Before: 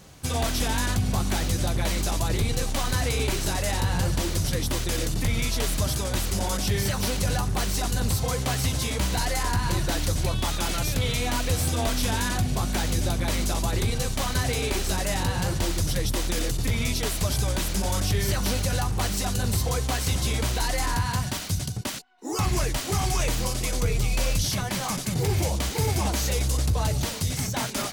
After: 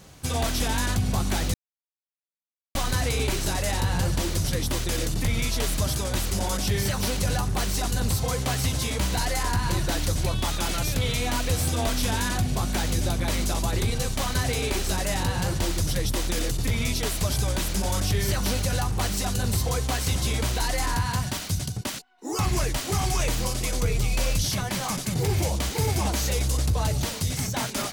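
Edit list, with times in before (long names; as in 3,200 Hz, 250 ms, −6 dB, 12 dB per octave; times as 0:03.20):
0:01.54–0:02.75: silence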